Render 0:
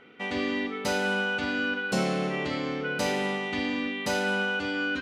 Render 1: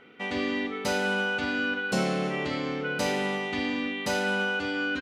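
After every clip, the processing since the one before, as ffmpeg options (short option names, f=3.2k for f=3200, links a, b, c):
-af "aecho=1:1:334:0.075"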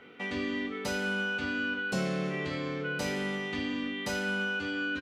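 -filter_complex "[0:a]asplit=2[a][b];[b]adelay=21,volume=-6.5dB[c];[a][c]amix=inputs=2:normalize=0,acrossover=split=130[d][e];[e]acompressor=threshold=-41dB:ratio=1.5[f];[d][f]amix=inputs=2:normalize=0"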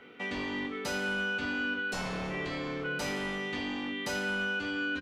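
-filter_complex "[0:a]bandreject=f=50:t=h:w=6,bandreject=f=100:t=h:w=6,bandreject=f=150:t=h:w=6,bandreject=f=200:t=h:w=6,acrossover=split=830[a][b];[a]aeval=exprs='0.0251*(abs(mod(val(0)/0.0251+3,4)-2)-1)':c=same[c];[c][b]amix=inputs=2:normalize=0"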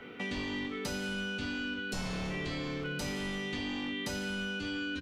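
-filter_complex "[0:a]acrossover=split=400|2800[a][b][c];[a]acompressor=threshold=-45dB:ratio=4[d];[b]acompressor=threshold=-48dB:ratio=4[e];[c]acompressor=threshold=-45dB:ratio=4[f];[d][e][f]amix=inputs=3:normalize=0,lowshelf=f=160:g=9,volume=4dB"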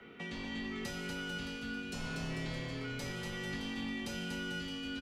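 -filter_complex "[0:a]afreqshift=-22,asplit=2[a][b];[b]aecho=0:1:240|444|617.4|764.8|890.1:0.631|0.398|0.251|0.158|0.1[c];[a][c]amix=inputs=2:normalize=0,volume=-6dB"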